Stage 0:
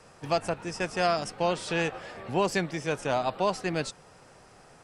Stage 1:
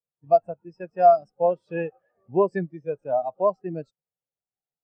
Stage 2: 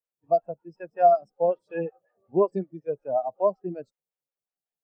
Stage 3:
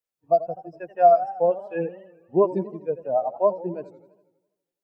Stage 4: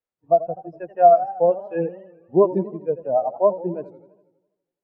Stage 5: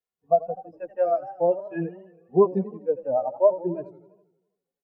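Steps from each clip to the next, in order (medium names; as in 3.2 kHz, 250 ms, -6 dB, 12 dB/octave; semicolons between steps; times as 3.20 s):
spectral contrast expander 2.5:1; trim +6.5 dB
lamp-driven phase shifter 5.4 Hz
modulated delay 82 ms, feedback 60%, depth 166 cents, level -15.5 dB; trim +2.5 dB
low-pass 1.1 kHz 6 dB/octave; trim +4 dB
endless flanger 2.4 ms +0.46 Hz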